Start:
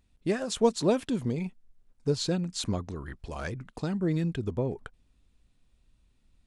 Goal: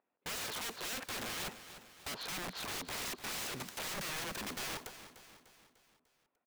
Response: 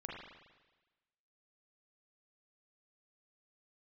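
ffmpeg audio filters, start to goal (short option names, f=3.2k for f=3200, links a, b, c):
-filter_complex "[0:a]agate=range=-22dB:threshold=-52dB:ratio=16:detection=peak,highpass=470,highshelf=f=3.4k:g=-12,acompressor=threshold=-43dB:ratio=5,alimiter=level_in=14.5dB:limit=-24dB:level=0:latency=1:release=54,volume=-14.5dB,adynamicsmooth=sensitivity=7.5:basefreq=2.4k,asplit=2[a][b];[b]highpass=f=720:p=1,volume=18dB,asoftclip=type=tanh:threshold=-38.5dB[c];[a][c]amix=inputs=2:normalize=0,lowpass=f=1.1k:p=1,volume=-6dB,aeval=exprs='(mod(376*val(0)+1,2)-1)/376':c=same,aecho=1:1:298|596|894|1192|1490:0.224|0.114|0.0582|0.0297|0.0151,volume=16dB"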